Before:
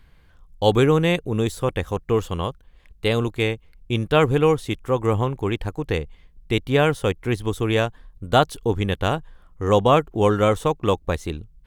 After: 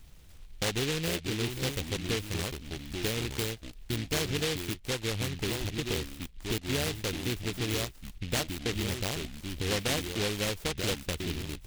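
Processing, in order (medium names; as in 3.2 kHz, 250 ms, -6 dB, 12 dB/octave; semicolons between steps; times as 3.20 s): compression 3:1, threshold -33 dBFS, peak gain reduction 16 dB; ever faster or slower copies 293 ms, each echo -4 st, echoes 2, each echo -6 dB; delay time shaken by noise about 2.8 kHz, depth 0.27 ms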